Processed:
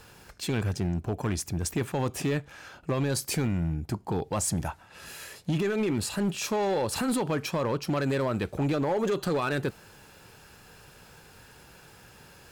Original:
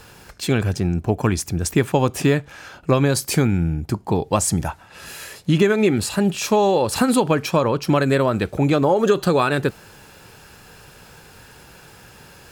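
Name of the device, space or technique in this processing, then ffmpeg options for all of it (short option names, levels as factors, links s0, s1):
limiter into clipper: -af "alimiter=limit=0.282:level=0:latency=1:release=13,asoftclip=type=hard:threshold=0.178,volume=0.447"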